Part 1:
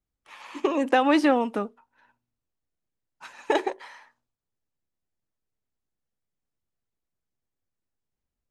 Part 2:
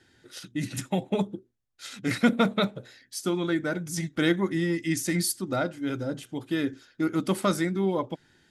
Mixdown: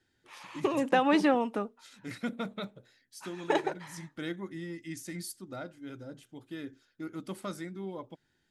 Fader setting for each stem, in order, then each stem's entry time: -4.5 dB, -13.5 dB; 0.00 s, 0.00 s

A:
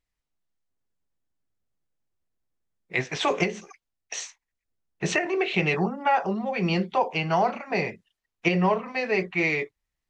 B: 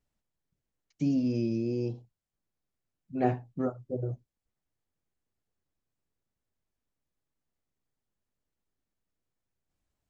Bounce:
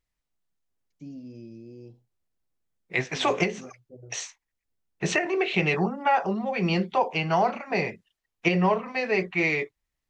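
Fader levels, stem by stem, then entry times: 0.0 dB, -14.0 dB; 0.00 s, 0.00 s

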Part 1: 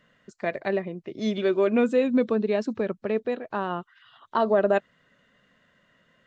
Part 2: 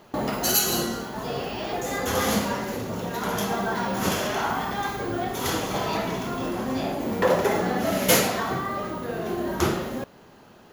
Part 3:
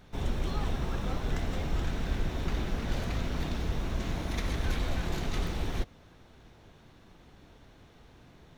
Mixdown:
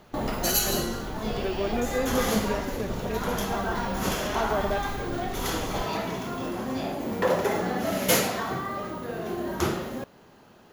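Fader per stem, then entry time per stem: -7.5 dB, -3.0 dB, -5.5 dB; 0.00 s, 0.00 s, 0.00 s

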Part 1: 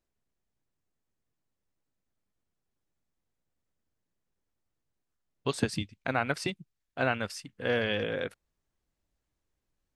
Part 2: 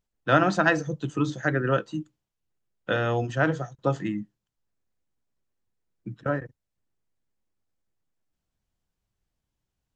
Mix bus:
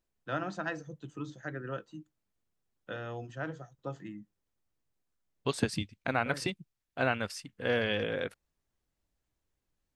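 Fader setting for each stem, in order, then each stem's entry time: -1.0 dB, -14.5 dB; 0.00 s, 0.00 s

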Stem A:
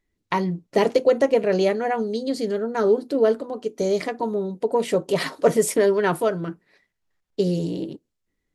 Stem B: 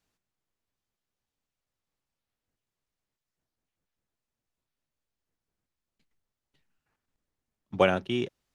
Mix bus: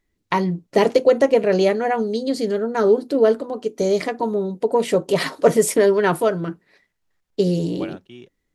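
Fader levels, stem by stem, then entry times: +3.0 dB, -12.5 dB; 0.00 s, 0.00 s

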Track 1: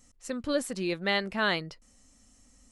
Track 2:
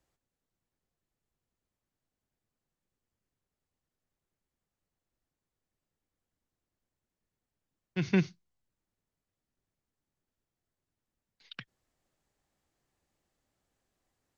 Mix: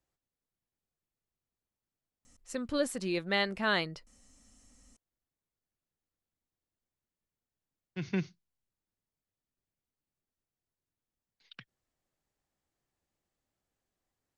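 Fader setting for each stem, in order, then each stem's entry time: -2.0 dB, -6.0 dB; 2.25 s, 0.00 s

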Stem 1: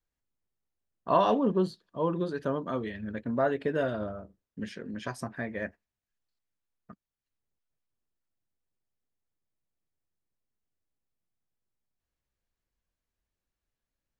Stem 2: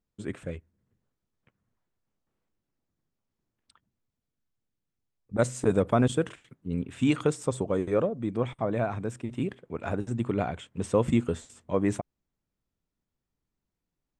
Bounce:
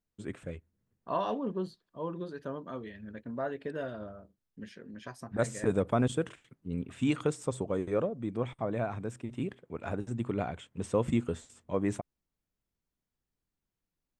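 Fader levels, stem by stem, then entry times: -8.0 dB, -4.5 dB; 0.00 s, 0.00 s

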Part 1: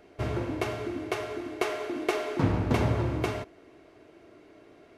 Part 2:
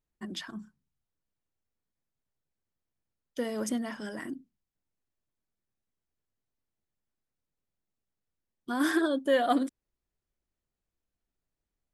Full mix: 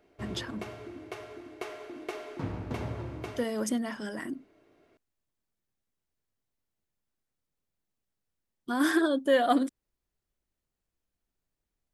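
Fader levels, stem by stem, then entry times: -10.0 dB, +1.5 dB; 0.00 s, 0.00 s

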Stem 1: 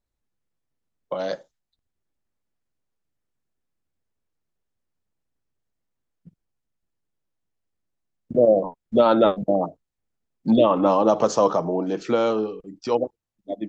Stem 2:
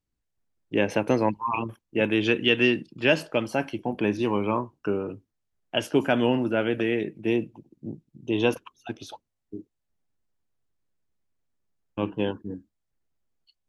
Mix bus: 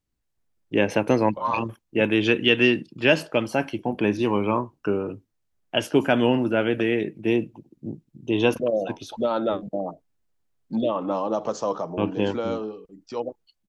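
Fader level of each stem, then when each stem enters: -7.5 dB, +2.5 dB; 0.25 s, 0.00 s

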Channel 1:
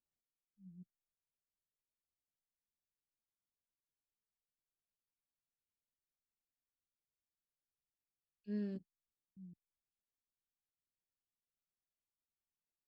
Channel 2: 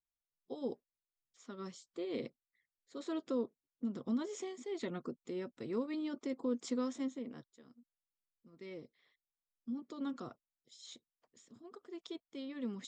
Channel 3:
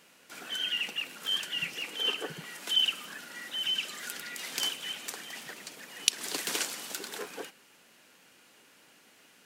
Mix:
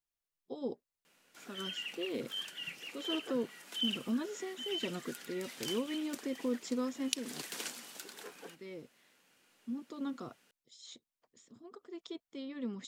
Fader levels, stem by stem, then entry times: mute, +1.0 dB, -9.5 dB; mute, 0.00 s, 1.05 s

